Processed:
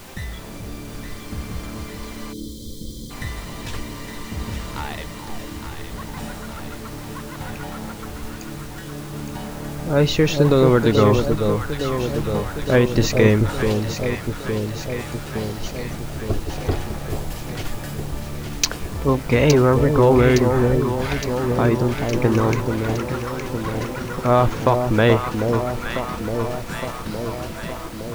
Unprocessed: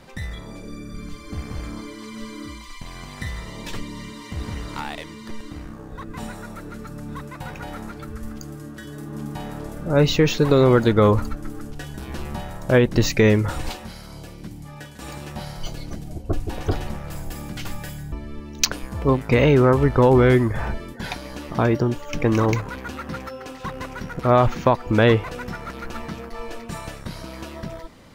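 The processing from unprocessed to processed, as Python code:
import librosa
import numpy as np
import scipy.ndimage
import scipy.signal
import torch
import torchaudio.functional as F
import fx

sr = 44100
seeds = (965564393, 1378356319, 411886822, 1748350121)

y = fx.dmg_noise_colour(x, sr, seeds[0], colour='pink', level_db=-41.0)
y = fx.echo_alternate(y, sr, ms=432, hz=890.0, feedback_pct=80, wet_db=-5.0)
y = fx.spec_box(y, sr, start_s=2.33, length_s=0.77, low_hz=560.0, high_hz=3100.0, gain_db=-26)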